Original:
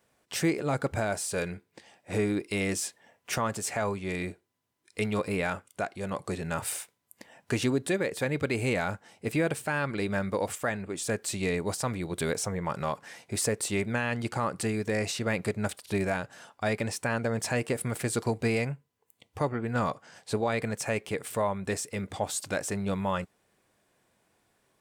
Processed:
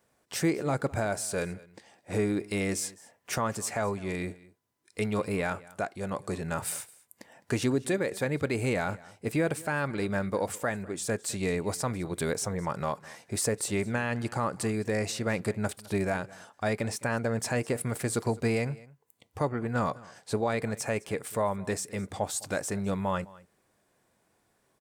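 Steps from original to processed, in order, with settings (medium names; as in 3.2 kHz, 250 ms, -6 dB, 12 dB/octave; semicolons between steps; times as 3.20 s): peaking EQ 2.9 kHz -4 dB 1 oct; delay 209 ms -21.5 dB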